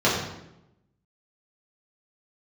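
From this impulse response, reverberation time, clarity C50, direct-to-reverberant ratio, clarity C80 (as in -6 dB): 0.85 s, 3.0 dB, -8.0 dB, 5.0 dB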